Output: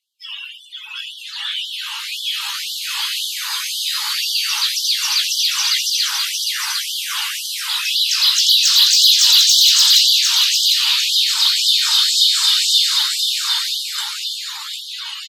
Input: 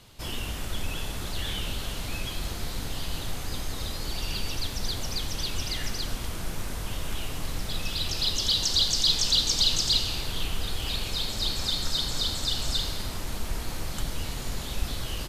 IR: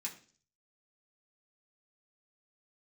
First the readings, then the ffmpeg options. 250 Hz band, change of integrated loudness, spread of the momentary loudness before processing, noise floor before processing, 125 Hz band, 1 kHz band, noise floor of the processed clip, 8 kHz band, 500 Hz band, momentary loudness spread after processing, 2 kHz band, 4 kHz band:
under -40 dB, +15.0 dB, 13 LU, -35 dBFS, under -40 dB, +7.5 dB, -34 dBFS, +15.0 dB, under -40 dB, 17 LU, +13.5 dB, +15.0 dB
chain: -filter_complex "[0:a]asplit=2[a][b];[b]highpass=f=720:p=1,volume=17dB,asoftclip=type=tanh:threshold=-10dB[c];[a][c]amix=inputs=2:normalize=0,lowpass=f=3.2k:p=1,volume=-6dB,aemphasis=mode=production:type=50kf,dynaudnorm=f=360:g=11:m=7dB,flanger=delay=16:depth=3.9:speed=1.2,asplit=2[d][e];[e]aecho=0:1:753|1506|2259|3012|3765|4518:0.631|0.284|0.128|0.0575|0.0259|0.0116[f];[d][f]amix=inputs=2:normalize=0,afftdn=nr=31:nf=-30,afftfilt=real='re*gte(b*sr/1024,790*pow(3000/790,0.5+0.5*sin(2*PI*1.9*pts/sr)))':imag='im*gte(b*sr/1024,790*pow(3000/790,0.5+0.5*sin(2*PI*1.9*pts/sr)))':win_size=1024:overlap=0.75,volume=1.5dB"

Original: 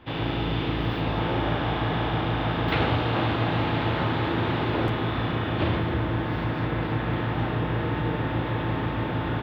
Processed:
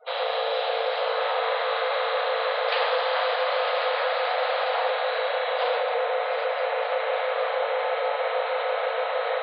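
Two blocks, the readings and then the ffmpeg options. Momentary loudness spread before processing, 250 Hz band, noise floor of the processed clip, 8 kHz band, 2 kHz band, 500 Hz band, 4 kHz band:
3 LU, under -40 dB, -28 dBFS, n/a, +3.0 dB, +6.5 dB, +3.5 dB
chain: -filter_complex "[0:a]highshelf=f=4k:g=6.5,afftdn=nr=35:nf=-47,asplit=2[a][b];[b]alimiter=limit=-18.5dB:level=0:latency=1,volume=-1.5dB[c];[a][c]amix=inputs=2:normalize=0,afreqshift=400,areverse,acompressor=mode=upward:threshold=-24dB:ratio=2.5,areverse,aresample=11025,aresample=44100,volume=-4.5dB"

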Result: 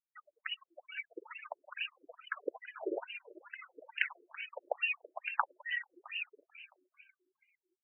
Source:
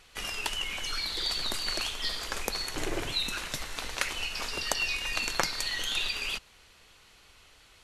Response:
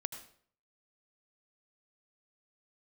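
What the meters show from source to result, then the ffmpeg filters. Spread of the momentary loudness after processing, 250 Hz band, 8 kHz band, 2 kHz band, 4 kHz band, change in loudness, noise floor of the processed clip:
15 LU, -8.0 dB, under -40 dB, -5.0 dB, -16.5 dB, -9.0 dB, under -85 dBFS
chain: -filter_complex "[0:a]afftfilt=real='re*gte(hypot(re,im),0.0316)':imag='im*gte(hypot(re,im),0.0316)':win_size=1024:overlap=0.75,asplit=2[a][b];[b]asplit=4[c][d][e][f];[c]adelay=331,afreqshift=-93,volume=-17.5dB[g];[d]adelay=662,afreqshift=-186,volume=-23.9dB[h];[e]adelay=993,afreqshift=-279,volume=-30.3dB[i];[f]adelay=1324,afreqshift=-372,volume=-36.6dB[j];[g][h][i][j]amix=inputs=4:normalize=0[k];[a][k]amix=inputs=2:normalize=0,afftfilt=real='re*between(b*sr/1024,420*pow(2200/420,0.5+0.5*sin(2*PI*2.3*pts/sr))/1.41,420*pow(2200/420,0.5+0.5*sin(2*PI*2.3*pts/sr))*1.41)':imag='im*between(b*sr/1024,420*pow(2200/420,0.5+0.5*sin(2*PI*2.3*pts/sr))/1.41,420*pow(2200/420,0.5+0.5*sin(2*PI*2.3*pts/sr))*1.41)':win_size=1024:overlap=0.75,volume=1.5dB"

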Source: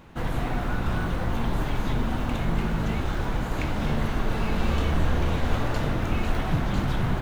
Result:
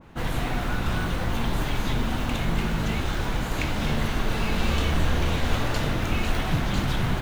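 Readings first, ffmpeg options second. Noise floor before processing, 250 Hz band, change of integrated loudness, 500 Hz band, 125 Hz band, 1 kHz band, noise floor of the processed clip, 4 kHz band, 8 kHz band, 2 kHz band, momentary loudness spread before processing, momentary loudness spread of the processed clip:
-29 dBFS, 0.0 dB, +1.0 dB, 0.0 dB, 0.0 dB, +0.5 dB, -29 dBFS, +6.5 dB, n/a, +3.0 dB, 3 LU, 3 LU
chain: -af "adynamicequalizer=threshold=0.00355:dfrequency=1900:dqfactor=0.7:tfrequency=1900:tqfactor=0.7:attack=5:release=100:ratio=0.375:range=3.5:mode=boostabove:tftype=highshelf"

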